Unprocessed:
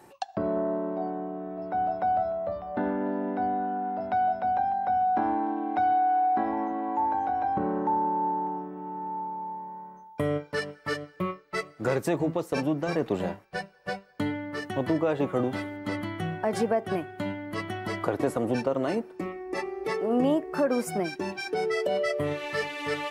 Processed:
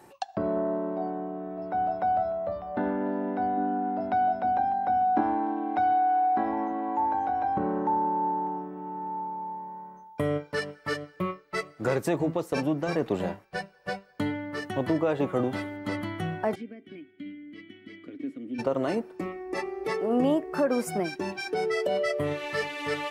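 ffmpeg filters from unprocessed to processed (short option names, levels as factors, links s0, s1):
-filter_complex "[0:a]asettb=1/sr,asplit=3[s0][s1][s2];[s0]atrim=end=3.574[s3];[s1]atrim=start=3.57:end=5.21,asetpts=PTS-STARTPTS,afade=t=in:d=0.004:c=qsin,afade=t=out:st=1.636:d=0.004:c=qsin,equalizer=f=290:t=o:w=0.77:g=7.5[s4];[s2]atrim=start=5.206[s5];[s3][s4]acrossfade=d=0.004:c1=hsin:c2=qsin[s6];[s6][s5]acrossfade=d=0.004:c1=qsin:c2=hsin,asplit=3[s7][s8][s9];[s7]afade=t=out:st=16.54:d=0.02[s10];[s8]asplit=3[s11][s12][s13];[s11]bandpass=f=270:t=q:w=8,volume=1[s14];[s12]bandpass=f=2290:t=q:w=8,volume=0.501[s15];[s13]bandpass=f=3010:t=q:w=8,volume=0.355[s16];[s14][s15][s16]amix=inputs=3:normalize=0,afade=t=in:st=16.54:d=0.02,afade=t=out:st=18.58:d=0.02[s17];[s9]afade=t=in:st=18.58:d=0.02[s18];[s10][s17][s18]amix=inputs=3:normalize=0"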